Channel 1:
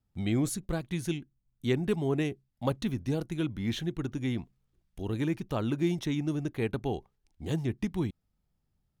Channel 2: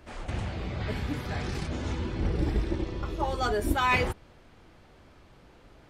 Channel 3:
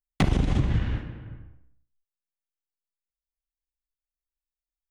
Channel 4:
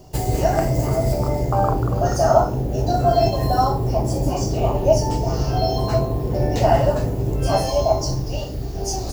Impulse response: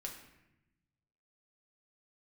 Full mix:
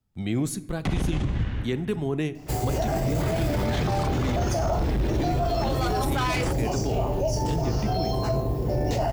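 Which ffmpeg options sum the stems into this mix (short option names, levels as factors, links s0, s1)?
-filter_complex "[0:a]volume=1,asplit=2[s0][s1];[s1]volume=0.473[s2];[1:a]volume=18.8,asoftclip=hard,volume=0.0531,dynaudnorm=f=580:g=3:m=2.82,adelay=2400,volume=0.794[s3];[2:a]adelay=650,volume=0.841[s4];[3:a]adelay=2350,volume=0.668[s5];[4:a]atrim=start_sample=2205[s6];[s2][s6]afir=irnorm=-1:irlink=0[s7];[s0][s3][s4][s5][s7]amix=inputs=5:normalize=0,acrossover=split=150|3000[s8][s9][s10];[s9]acompressor=threshold=0.112:ratio=6[s11];[s8][s11][s10]amix=inputs=3:normalize=0,alimiter=limit=0.141:level=0:latency=1:release=12"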